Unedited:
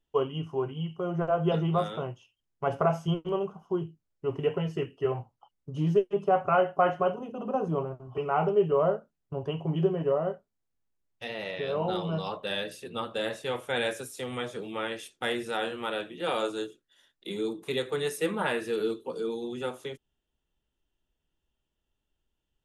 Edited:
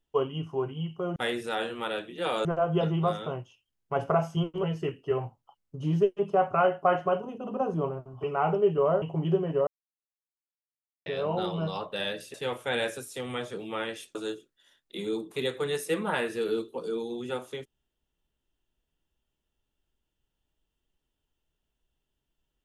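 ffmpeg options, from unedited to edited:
-filter_complex "[0:a]asplit=9[s0][s1][s2][s3][s4][s5][s6][s7][s8];[s0]atrim=end=1.162[s9];[s1]atrim=start=15.178:end=16.472[s10];[s2]atrim=start=1.158:end=3.342[s11];[s3]atrim=start=4.568:end=8.962[s12];[s4]atrim=start=9.528:end=10.18,asetpts=PTS-STARTPTS,afade=t=out:st=0.648:d=0.004:c=hsin[s13];[s5]atrim=start=10.18:end=11.57,asetpts=PTS-STARTPTS,volume=0[s14];[s6]atrim=start=11.57:end=12.852,asetpts=PTS-STARTPTS,afade=t=in:d=0.004:c=hsin[s15];[s7]atrim=start=13.368:end=15.182[s16];[s8]atrim=start=16.468[s17];[s9][s10]acrossfade=d=0.004:c1=hsin:c2=hsin[s18];[s18][s11]acrossfade=d=0.004:c1=hsin:c2=hsin[s19];[s19][s12]acrossfade=d=0.004:c1=hsin:c2=hsin[s20];[s13][s14][s15]concat=n=3:v=0:a=1[s21];[s20][s21]acrossfade=d=0.004:c1=hsin:c2=hsin[s22];[s22][s16]acrossfade=d=0.004:c1=hsin:c2=hsin[s23];[s23][s17]acrossfade=d=0.004:c1=hsin:c2=hsin"

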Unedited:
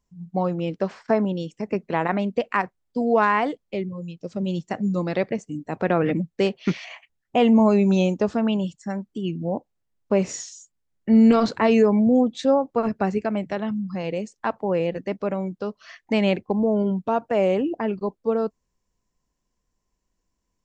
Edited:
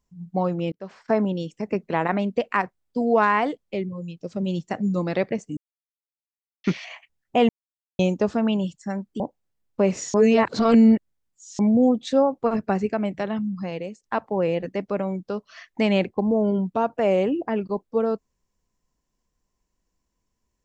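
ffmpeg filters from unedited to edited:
-filter_complex "[0:a]asplit=10[s0][s1][s2][s3][s4][s5][s6][s7][s8][s9];[s0]atrim=end=0.72,asetpts=PTS-STARTPTS,afade=t=out:st=0.716:d=0.004:c=hsin[s10];[s1]atrim=start=0.72:end=5.57,asetpts=PTS-STARTPTS,afade=t=in:d=0.46,afade=t=out:st=4.846:d=0.004:c=hsin[s11];[s2]atrim=start=5.57:end=6.64,asetpts=PTS-STARTPTS,volume=0[s12];[s3]atrim=start=6.64:end=7.49,asetpts=PTS-STARTPTS,afade=t=in:d=0.004:c=hsin,afade=t=out:st=0.846:d=0.004:c=hsin[s13];[s4]atrim=start=7.49:end=7.99,asetpts=PTS-STARTPTS,volume=0[s14];[s5]atrim=start=7.99:end=9.202,asetpts=PTS-STARTPTS,afade=t=in:d=0.004:c=hsin[s15];[s6]atrim=start=9.518:end=10.462[s16];[s7]atrim=start=10.458:end=11.912,asetpts=PTS-STARTPTS,areverse[s17];[s8]atrim=start=11.908:end=14.35,asetpts=PTS-STARTPTS,afade=t=out:st=1.992:d=0.45:silence=0.266073[s18];[s9]atrim=start=14.35,asetpts=PTS-STARTPTS,afade=t=in:d=0.004:c=hsin:silence=0.266073[s19];[s10][s11][s12][s13][s14][s15]concat=n=6:v=0:a=1[s20];[s20][s16]acrossfade=d=0.004:c1=hsin:c2=hsin[s21];[s21][s17]acrossfade=d=0.004:c1=hsin:c2=hsin[s22];[s18][s19]concat=n=2:v=0:a=1[s23];[s22][s23]acrossfade=d=0.004:c1=hsin:c2=hsin"

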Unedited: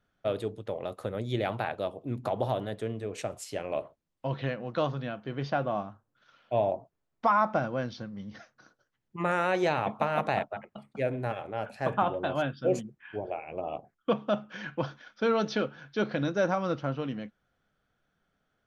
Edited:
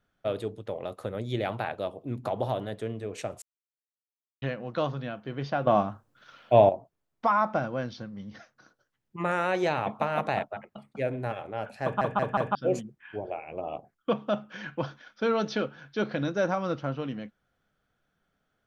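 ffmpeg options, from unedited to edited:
-filter_complex "[0:a]asplit=9[s0][s1][s2][s3][s4][s5][s6][s7][s8];[s0]atrim=end=3.42,asetpts=PTS-STARTPTS,afade=t=out:st=3.416:d=0.004:c=hsin[s9];[s1]atrim=start=3.42:end=4.42,asetpts=PTS-STARTPTS,volume=0[s10];[s2]atrim=start=4.42:end=5.672,asetpts=PTS-STARTPTS,afade=t=in:d=0.004:c=hsin[s11];[s3]atrim=start=5.668:end=6.692,asetpts=PTS-STARTPTS,volume=2.82[s12];[s4]atrim=start=6.688:end=12.012[s13];[s5]atrim=start=11.828:end=12.012[s14];[s6]atrim=start=11.828:end=12.012[s15];[s7]atrim=start=11.828:end=12.012[s16];[s8]atrim=start=12.548[s17];[s9][s10][s11]concat=n=3:v=0:a=1[s18];[s18][s12]acrossfade=d=0.004:c1=hsin:c2=hsin[s19];[s19][s13]acrossfade=d=0.004:c1=hsin:c2=hsin[s20];[s20][s14]acrossfade=d=0.004:c1=hsin:c2=hsin[s21];[s21][s15]acrossfade=d=0.004:c1=hsin:c2=hsin[s22];[s22][s16]acrossfade=d=0.004:c1=hsin:c2=hsin[s23];[s23][s17]acrossfade=d=0.004:c1=hsin:c2=hsin"

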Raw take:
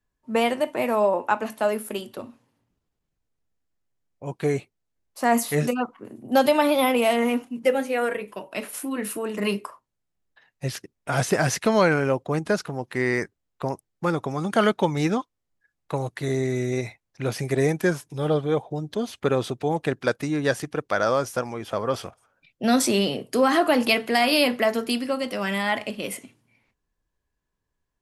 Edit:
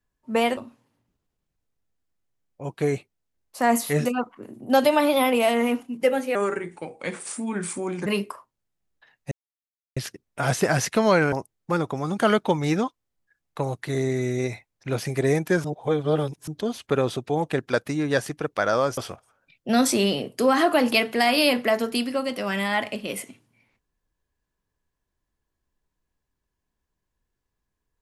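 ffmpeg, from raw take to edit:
-filter_complex "[0:a]asplit=9[s0][s1][s2][s3][s4][s5][s6][s7][s8];[s0]atrim=end=0.572[s9];[s1]atrim=start=2.188:end=7.974[s10];[s2]atrim=start=7.97:end=9.41,asetpts=PTS-STARTPTS,asetrate=37044,aresample=44100[s11];[s3]atrim=start=9.406:end=10.66,asetpts=PTS-STARTPTS,afade=t=out:st=1.25:d=0.004:c=hsin,apad=pad_dur=0.65[s12];[s4]atrim=start=10.66:end=12.022,asetpts=PTS-STARTPTS,afade=t=in:d=0.004:c=hsin[s13];[s5]atrim=start=13.658:end=17.982[s14];[s6]atrim=start=17.978:end=18.812,asetpts=PTS-STARTPTS,areverse[s15];[s7]atrim=start=18.808:end=21.312[s16];[s8]atrim=start=21.918[s17];[s9][s10]acrossfade=d=0.004:c1=hsin:c2=hsin[s18];[s18][s11]acrossfade=d=0.004:c1=hsin:c2=hsin[s19];[s12][s13]concat=n=2:v=0:a=1[s20];[s19][s20]acrossfade=d=0.004:c1=hsin:c2=hsin[s21];[s21][s14]acrossfade=d=0.004:c1=hsin:c2=hsin[s22];[s22][s15]acrossfade=d=0.004:c1=hsin:c2=hsin[s23];[s23][s16]acrossfade=d=0.004:c1=hsin:c2=hsin[s24];[s24][s17]acrossfade=d=0.004:c1=hsin:c2=hsin"

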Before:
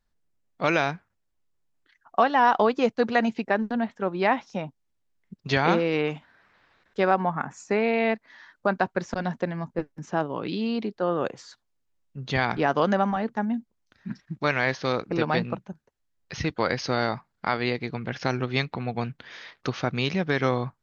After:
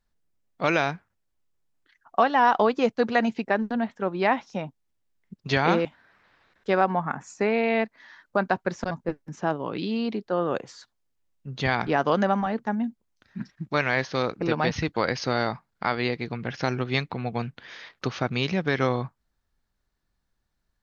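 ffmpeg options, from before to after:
-filter_complex "[0:a]asplit=4[s0][s1][s2][s3];[s0]atrim=end=5.852[s4];[s1]atrim=start=6.148:end=9.212[s5];[s2]atrim=start=9.608:end=15.412[s6];[s3]atrim=start=16.328[s7];[s4][s5]acrossfade=d=0.004:c1=hsin:c2=hsin[s8];[s8][s6]acrossfade=d=0.004:c1=hsin:c2=hsin[s9];[s9][s7]acrossfade=d=0.004:c1=hsin:c2=hsin"

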